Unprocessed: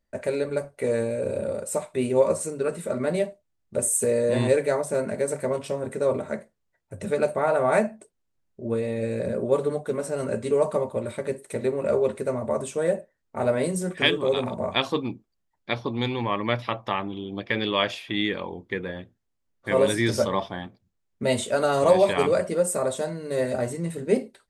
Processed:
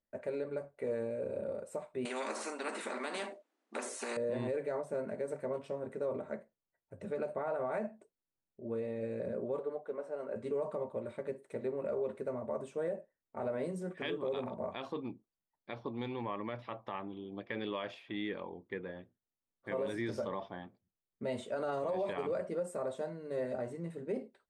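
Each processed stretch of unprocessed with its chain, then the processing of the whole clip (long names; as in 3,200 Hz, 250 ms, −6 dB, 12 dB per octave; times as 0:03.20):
0:02.05–0:04.17: linear-phase brick-wall band-pass 220–11,000 Hz + every bin compressed towards the loudest bin 4 to 1
0:09.59–0:10.36: high-pass filter 600 Hz + spectral tilt −3.5 dB per octave
whole clip: low-pass filter 1,300 Hz 6 dB per octave; low-shelf EQ 120 Hz −12 dB; brickwall limiter −19 dBFS; level −8.5 dB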